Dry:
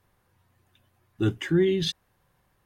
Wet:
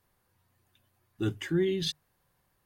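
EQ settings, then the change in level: bell 4500 Hz +3.5 dB 0.21 oct; high shelf 6900 Hz +7.5 dB; notches 50/100/150 Hz; -5.5 dB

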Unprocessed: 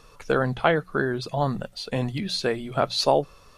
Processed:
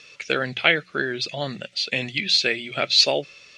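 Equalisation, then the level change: speaker cabinet 130–6900 Hz, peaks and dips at 350 Hz +4 dB, 580 Hz +5 dB, 1300 Hz +5 dB; resonant high shelf 1600 Hz +12.5 dB, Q 3; -4.5 dB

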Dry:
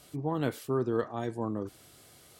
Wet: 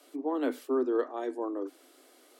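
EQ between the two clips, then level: Chebyshev high-pass 250 Hz, order 10; tilt -2 dB/oct; high shelf 12000 Hz +5 dB; 0.0 dB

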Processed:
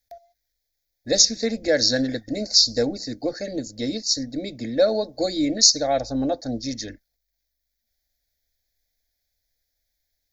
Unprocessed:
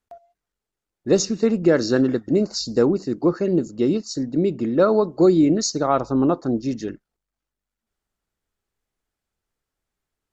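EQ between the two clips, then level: high shelf 3500 Hz +11.5 dB; fixed phaser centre 410 Hz, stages 4; fixed phaser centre 1900 Hz, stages 8; +5.5 dB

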